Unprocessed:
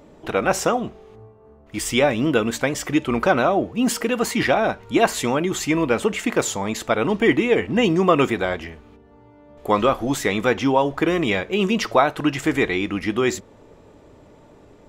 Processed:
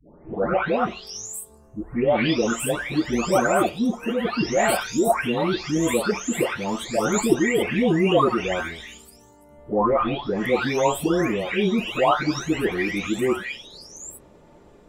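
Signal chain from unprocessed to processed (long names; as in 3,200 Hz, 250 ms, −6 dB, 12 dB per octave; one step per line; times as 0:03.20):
every frequency bin delayed by itself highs late, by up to 801 ms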